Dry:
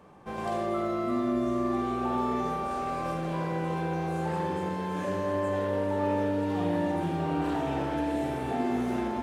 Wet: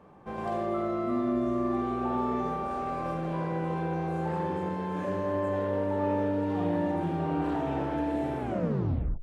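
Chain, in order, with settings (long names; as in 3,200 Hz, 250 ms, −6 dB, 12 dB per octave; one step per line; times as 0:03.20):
turntable brake at the end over 0.84 s
high-shelf EQ 3,000 Hz −11 dB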